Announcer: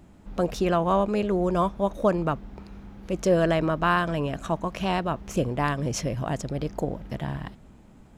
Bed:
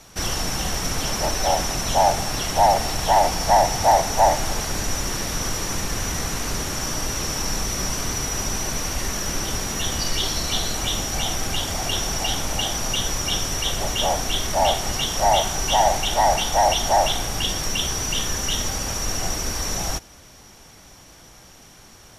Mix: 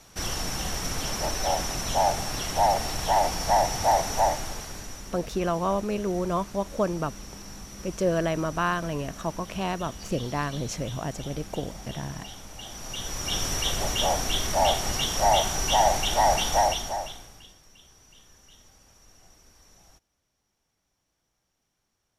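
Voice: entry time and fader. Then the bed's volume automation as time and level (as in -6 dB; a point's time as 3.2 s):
4.75 s, -3.5 dB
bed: 4.17 s -5.5 dB
5.17 s -18.5 dB
12.53 s -18.5 dB
13.45 s -3 dB
16.58 s -3 dB
17.61 s -30.5 dB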